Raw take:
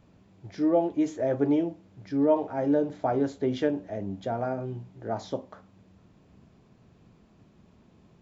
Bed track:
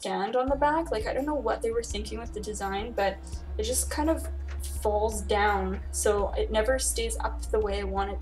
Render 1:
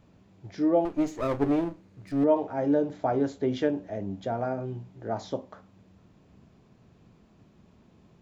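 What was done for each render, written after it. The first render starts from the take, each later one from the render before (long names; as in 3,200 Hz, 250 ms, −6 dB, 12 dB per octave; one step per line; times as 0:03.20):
0:00.85–0:02.24: lower of the sound and its delayed copy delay 0.46 ms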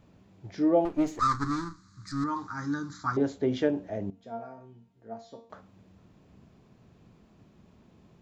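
0:01.19–0:03.17: drawn EQ curve 130 Hz 0 dB, 310 Hz −7 dB, 450 Hz −23 dB, 640 Hz −29 dB, 1,200 Hz +14 dB, 2,000 Hz 0 dB, 2,800 Hz −15 dB, 4,100 Hz +13 dB, 7,700 Hz +14 dB, 11,000 Hz −11 dB
0:04.10–0:05.50: tuned comb filter 230 Hz, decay 0.39 s, mix 90%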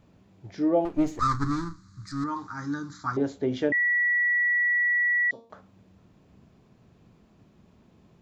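0:00.94–0:02.06: low-shelf EQ 180 Hz +8.5 dB
0:03.72–0:05.31: beep over 1,940 Hz −20.5 dBFS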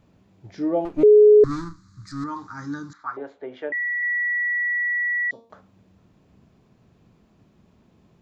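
0:01.03–0:01.44: beep over 421 Hz −8 dBFS
0:02.93–0:04.03: three-way crossover with the lows and the highs turned down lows −22 dB, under 440 Hz, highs −22 dB, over 2,700 Hz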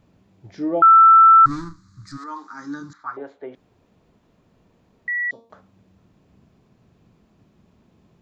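0:00.82–0:01.46: beep over 1,330 Hz −6.5 dBFS
0:02.16–0:02.80: high-pass filter 450 Hz → 160 Hz 24 dB per octave
0:03.55–0:05.08: fill with room tone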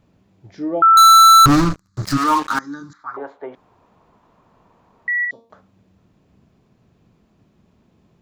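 0:00.97–0:02.59: leveller curve on the samples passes 5
0:03.14–0:05.25: parametric band 1,000 Hz +14 dB 1.2 octaves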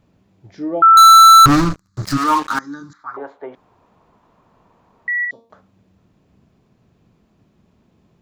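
dynamic equaliser 1,800 Hz, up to +3 dB, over −17 dBFS, Q 0.84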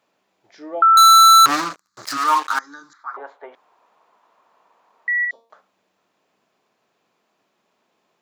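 high-pass filter 660 Hz 12 dB per octave
dynamic equaliser 1,300 Hz, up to −4 dB, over −16 dBFS, Q 5.6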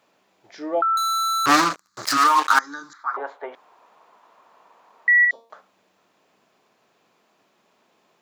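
compressor whose output falls as the input rises −18 dBFS, ratio −1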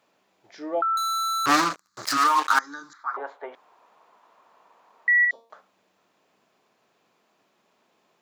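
level −3.5 dB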